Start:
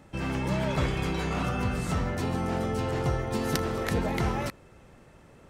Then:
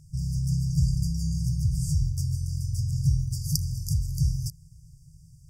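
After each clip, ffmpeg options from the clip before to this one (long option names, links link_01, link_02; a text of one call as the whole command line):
ffmpeg -i in.wav -af "afftfilt=real='re*(1-between(b*sr/4096,170,4600))':imag='im*(1-between(b*sr/4096,170,4600))':win_size=4096:overlap=0.75,equalizer=frequency=280:width_type=o:width=0.58:gain=13,volume=6dB" out.wav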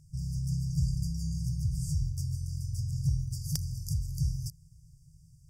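ffmpeg -i in.wav -af "volume=13.5dB,asoftclip=hard,volume=-13.5dB,volume=-5.5dB" out.wav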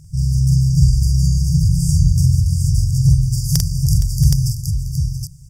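ffmpeg -i in.wav -af "aecho=1:1:45|466|680|770:0.668|0.211|0.2|0.631,acontrast=73,volume=7.5dB" out.wav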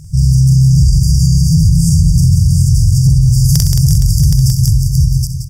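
ffmpeg -i in.wav -af "aecho=1:1:66|175|328|352:0.211|0.376|0.1|0.2,alimiter=level_in=9.5dB:limit=-1dB:release=50:level=0:latency=1,volume=-1dB" out.wav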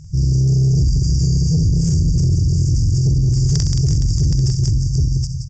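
ffmpeg -i in.wav -af "asoftclip=type=tanh:threshold=-5dB,aresample=16000,aresample=44100,volume=-4dB" out.wav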